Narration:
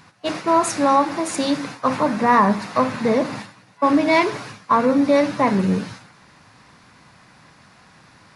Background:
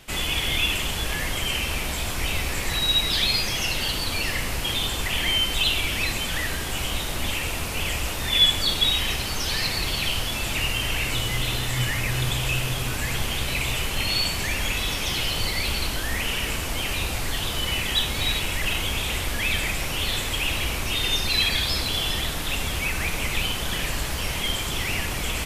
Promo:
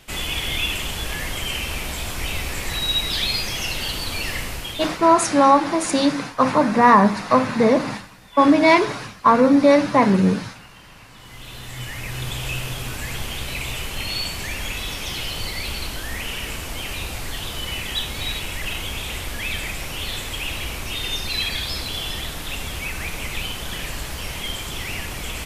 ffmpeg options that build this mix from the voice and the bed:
-filter_complex "[0:a]adelay=4550,volume=2.5dB[a];[1:a]volume=20.5dB,afade=t=out:st=4.38:d=0.71:silence=0.0707946,afade=t=in:st=11.16:d=1.3:silence=0.0891251[b];[a][b]amix=inputs=2:normalize=0"

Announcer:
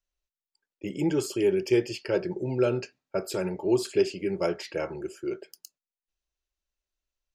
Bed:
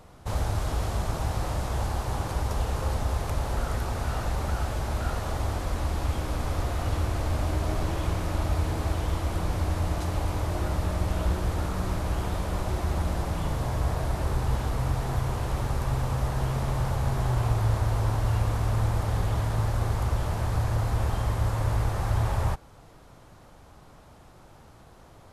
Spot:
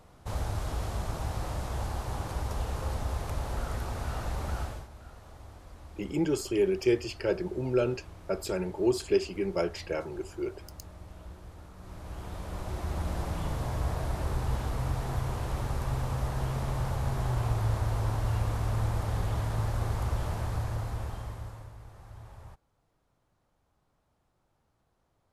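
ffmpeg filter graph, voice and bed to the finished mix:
-filter_complex "[0:a]adelay=5150,volume=-2dB[a];[1:a]volume=11dB,afade=t=out:st=4.6:d=0.28:silence=0.177828,afade=t=in:st=11.77:d=1.47:silence=0.158489,afade=t=out:st=20.28:d=1.44:silence=0.11885[b];[a][b]amix=inputs=2:normalize=0"

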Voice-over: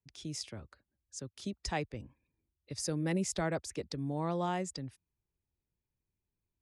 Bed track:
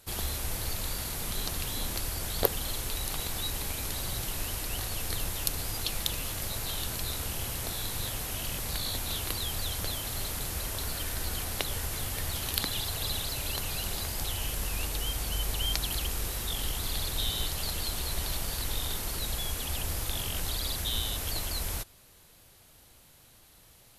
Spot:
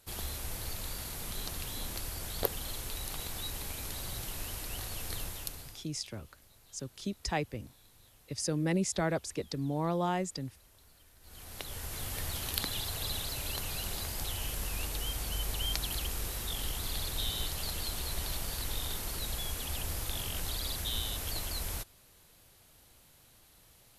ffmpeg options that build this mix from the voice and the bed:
-filter_complex "[0:a]adelay=5600,volume=2.5dB[a];[1:a]volume=18dB,afade=t=out:st=5.19:d=0.68:silence=0.0841395,afade=t=in:st=11.21:d=0.95:silence=0.0668344[b];[a][b]amix=inputs=2:normalize=0"

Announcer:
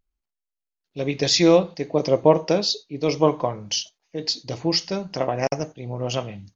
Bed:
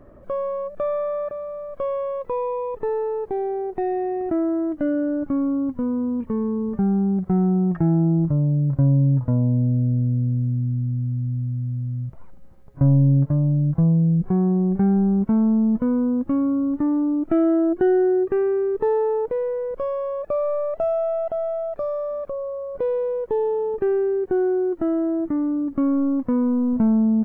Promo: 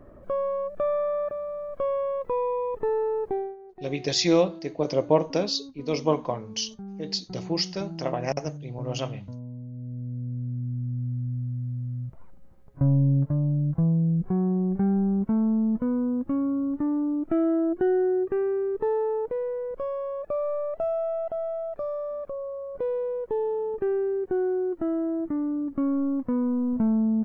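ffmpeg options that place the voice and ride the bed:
-filter_complex "[0:a]adelay=2850,volume=-5dB[a];[1:a]volume=12.5dB,afade=t=out:st=3.31:d=0.25:silence=0.133352,afade=t=in:st=9.71:d=1.37:silence=0.199526[b];[a][b]amix=inputs=2:normalize=0"

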